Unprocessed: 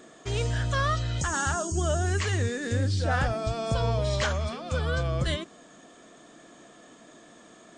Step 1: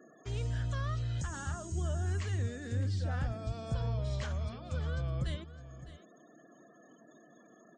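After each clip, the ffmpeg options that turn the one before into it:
-filter_complex "[0:a]afftfilt=real='re*gte(hypot(re,im),0.00398)':imag='im*gte(hypot(re,im),0.00398)':win_size=1024:overlap=0.75,acrossover=split=230[a][b];[b]acompressor=threshold=-53dB:ratio=1.5[c];[a][c]amix=inputs=2:normalize=0,aecho=1:1:608:0.178,volume=-5.5dB"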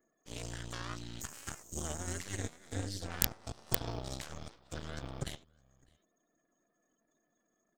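-af "aeval=exprs='0.075*(cos(1*acos(clip(val(0)/0.075,-1,1)))-cos(1*PI/2))+0.0266*(cos(3*acos(clip(val(0)/0.075,-1,1)))-cos(3*PI/2))+0.00266*(cos(6*acos(clip(val(0)/0.075,-1,1)))-cos(6*PI/2))':c=same,aeval=exprs='(mod(13.3*val(0)+1,2)-1)/13.3':c=same,aemphasis=mode=production:type=75kf,volume=3dB"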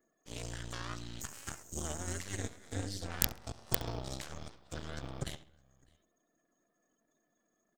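-filter_complex "[0:a]asplit=2[a][b];[b]adelay=67,lowpass=f=4.5k:p=1,volume=-17.5dB,asplit=2[c][d];[d]adelay=67,lowpass=f=4.5k:p=1,volume=0.51,asplit=2[e][f];[f]adelay=67,lowpass=f=4.5k:p=1,volume=0.51,asplit=2[g][h];[h]adelay=67,lowpass=f=4.5k:p=1,volume=0.51[i];[a][c][e][g][i]amix=inputs=5:normalize=0"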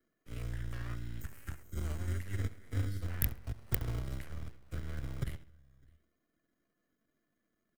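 -filter_complex "[0:a]firequalizer=gain_entry='entry(100,0);entry(160,-7);entry(750,-14);entry(2000,-9);entry(3500,-22);entry(7100,-25);entry(11000,-9)':delay=0.05:min_phase=1,acrossover=split=120|960|4800[a][b][c][d];[b]acrusher=samples=25:mix=1:aa=0.000001[e];[a][e][c][d]amix=inputs=4:normalize=0,volume=7dB"

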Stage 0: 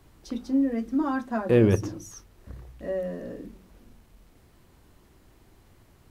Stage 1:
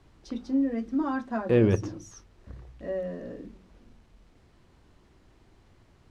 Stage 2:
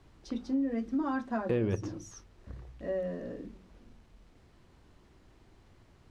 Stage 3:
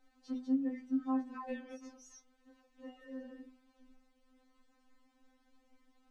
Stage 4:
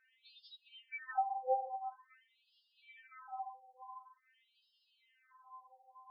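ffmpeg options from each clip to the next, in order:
-af "lowpass=6.2k,volume=-2dB"
-af "acompressor=threshold=-26dB:ratio=4,volume=-1dB"
-af "afftfilt=real='re*3.46*eq(mod(b,12),0)':imag='im*3.46*eq(mod(b,12),0)':win_size=2048:overlap=0.75,volume=-6dB"
-af "afftfilt=real='real(if(between(b,1,1008),(2*floor((b-1)/48)+1)*48-b,b),0)':imag='imag(if(between(b,1,1008),(2*floor((b-1)/48)+1)*48-b,b),0)*if(between(b,1,1008),-1,1)':win_size=2048:overlap=0.75,asoftclip=type=tanh:threshold=-28.5dB,afftfilt=real='re*between(b*sr/1024,680*pow(3800/680,0.5+0.5*sin(2*PI*0.47*pts/sr))/1.41,680*pow(3800/680,0.5+0.5*sin(2*PI*0.47*pts/sr))*1.41)':imag='im*between(b*sr/1024,680*pow(3800/680,0.5+0.5*sin(2*PI*0.47*pts/sr))/1.41,680*pow(3800/680,0.5+0.5*sin(2*PI*0.47*pts/sr))*1.41)':win_size=1024:overlap=0.75,volume=9.5dB"

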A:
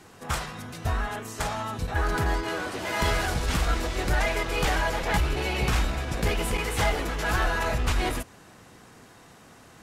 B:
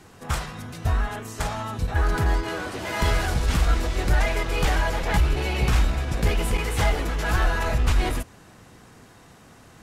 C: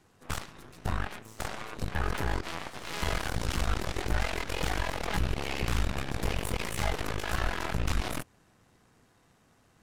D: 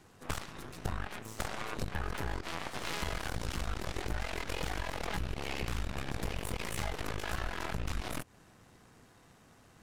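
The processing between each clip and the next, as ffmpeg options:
-af "lowshelf=f=150:g=6.5"
-af "aeval=exprs='0.299*(cos(1*acos(clip(val(0)/0.299,-1,1)))-cos(1*PI/2))+0.0106*(cos(3*acos(clip(val(0)/0.299,-1,1)))-cos(3*PI/2))+0.0944*(cos(4*acos(clip(val(0)/0.299,-1,1)))-cos(4*PI/2))+0.0473*(cos(7*acos(clip(val(0)/0.299,-1,1)))-cos(7*PI/2))':c=same,alimiter=limit=-18dB:level=0:latency=1:release=39,volume=-1dB"
-af "acompressor=threshold=-35dB:ratio=6,volume=4dB"

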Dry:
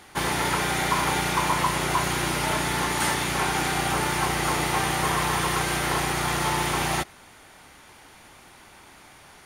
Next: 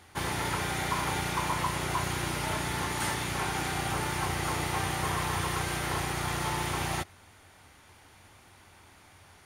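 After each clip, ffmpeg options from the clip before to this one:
-af "equalizer=f=90:t=o:w=0.54:g=13.5,volume=-7dB"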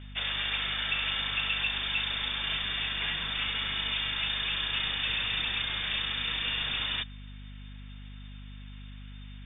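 -af "lowpass=f=3.1k:t=q:w=0.5098,lowpass=f=3.1k:t=q:w=0.6013,lowpass=f=3.1k:t=q:w=0.9,lowpass=f=3.1k:t=q:w=2.563,afreqshift=-3700,asubboost=boost=4.5:cutoff=240,aeval=exprs='val(0)+0.00708*(sin(2*PI*50*n/s)+sin(2*PI*2*50*n/s)/2+sin(2*PI*3*50*n/s)/3+sin(2*PI*4*50*n/s)/4+sin(2*PI*5*50*n/s)/5)':c=same"

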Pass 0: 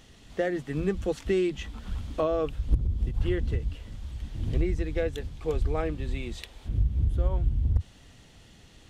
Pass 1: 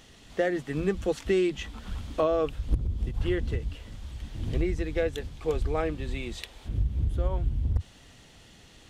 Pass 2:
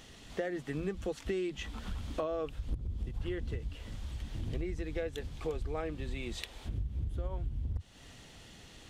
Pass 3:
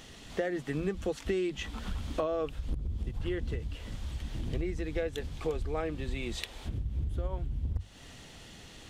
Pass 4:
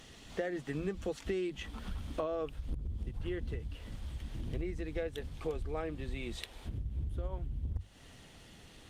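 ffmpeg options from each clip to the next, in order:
-af "lowshelf=f=240:g=-5,volume=2.5dB"
-af "acompressor=threshold=-35dB:ratio=3"
-af "bandreject=f=50:t=h:w=6,bandreject=f=100:t=h:w=6,volume=3.5dB"
-af "volume=-4dB" -ar 48000 -c:a libopus -b:a 48k

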